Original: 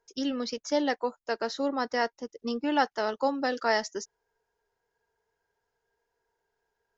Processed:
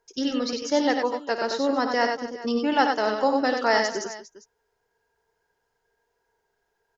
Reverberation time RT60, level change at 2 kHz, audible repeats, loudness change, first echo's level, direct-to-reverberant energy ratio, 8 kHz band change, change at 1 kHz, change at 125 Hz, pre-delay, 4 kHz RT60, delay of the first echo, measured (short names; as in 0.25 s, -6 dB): none, +5.5 dB, 4, +5.5 dB, -12.5 dB, none, n/a, +5.5 dB, n/a, none, none, 55 ms